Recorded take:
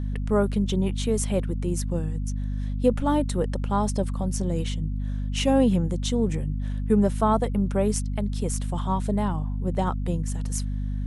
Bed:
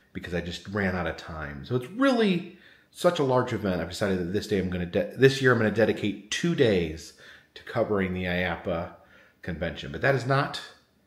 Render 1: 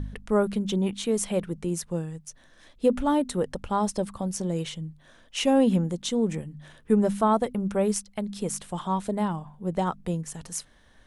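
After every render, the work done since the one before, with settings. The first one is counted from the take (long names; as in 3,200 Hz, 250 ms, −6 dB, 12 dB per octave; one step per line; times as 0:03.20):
hum removal 50 Hz, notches 5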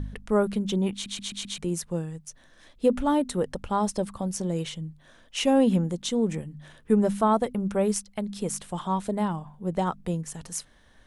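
0:00.93: stutter in place 0.13 s, 5 plays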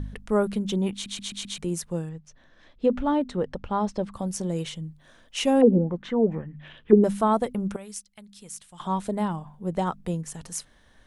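0:02.09–0:04.13: high-frequency loss of the air 150 metres
0:05.61–0:07.04: envelope-controlled low-pass 370–3,500 Hz down, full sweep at −17 dBFS
0:07.76–0:08.80: guitar amp tone stack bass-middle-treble 5-5-5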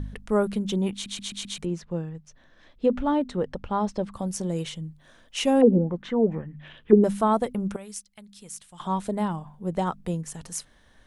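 0:01.65–0:02.15: high-frequency loss of the air 170 metres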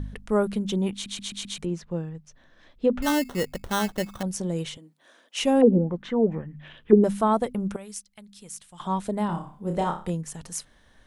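0:03.02–0:04.23: sample-rate reduction 2,400 Hz
0:04.77–0:05.37: high-pass filter 280 Hz 24 dB per octave
0:09.26–0:10.10: flutter between parallel walls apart 5 metres, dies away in 0.35 s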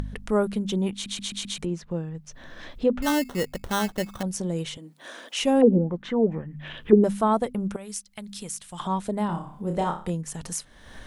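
upward compression, threshold −27 dBFS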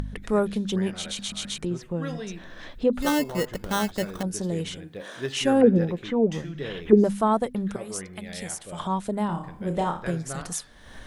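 mix in bed −13 dB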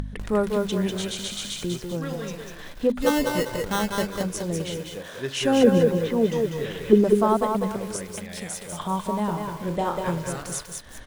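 single-tap delay 198 ms −11 dB
feedback echo at a low word length 196 ms, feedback 35%, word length 7 bits, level −4 dB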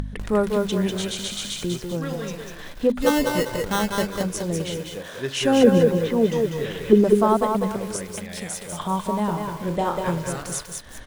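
level +2 dB
brickwall limiter −2 dBFS, peak gain reduction 1.5 dB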